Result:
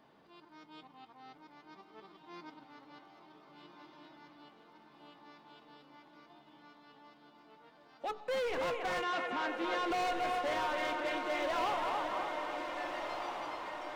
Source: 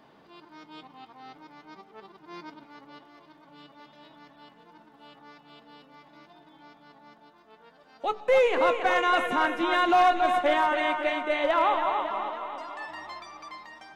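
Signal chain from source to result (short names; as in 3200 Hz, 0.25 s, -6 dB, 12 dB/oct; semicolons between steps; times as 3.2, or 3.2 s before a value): hard clip -24.5 dBFS, distortion -8 dB; 9.03–9.91 BPF 180–4900 Hz; diffused feedback echo 1.494 s, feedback 57%, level -6.5 dB; gain -7.5 dB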